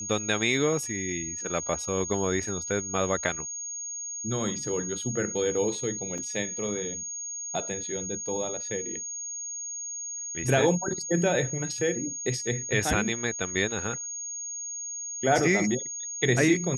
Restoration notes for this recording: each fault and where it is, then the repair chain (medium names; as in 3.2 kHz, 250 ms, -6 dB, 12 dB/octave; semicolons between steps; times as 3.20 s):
whine 6.6 kHz -33 dBFS
6.18 s: dropout 4.1 ms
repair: band-stop 6.6 kHz, Q 30; interpolate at 6.18 s, 4.1 ms